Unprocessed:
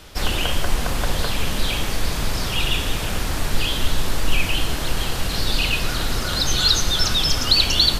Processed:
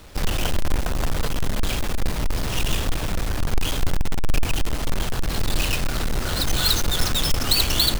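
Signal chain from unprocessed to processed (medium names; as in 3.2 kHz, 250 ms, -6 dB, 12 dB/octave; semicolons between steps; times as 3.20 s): square wave that keeps the level; trim -6 dB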